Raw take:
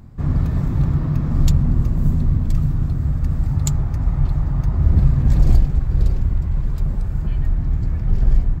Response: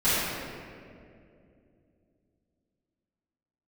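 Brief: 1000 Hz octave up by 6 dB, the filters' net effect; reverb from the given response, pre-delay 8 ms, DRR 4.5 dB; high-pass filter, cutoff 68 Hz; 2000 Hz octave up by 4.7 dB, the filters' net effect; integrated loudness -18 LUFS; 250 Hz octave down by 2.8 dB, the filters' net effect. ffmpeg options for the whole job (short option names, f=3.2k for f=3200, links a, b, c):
-filter_complex "[0:a]highpass=68,equalizer=f=250:t=o:g=-5.5,equalizer=f=1k:t=o:g=7,equalizer=f=2k:t=o:g=3.5,asplit=2[a][b];[1:a]atrim=start_sample=2205,adelay=8[c];[b][c]afir=irnorm=-1:irlink=0,volume=-20.5dB[d];[a][d]amix=inputs=2:normalize=0,volume=3dB"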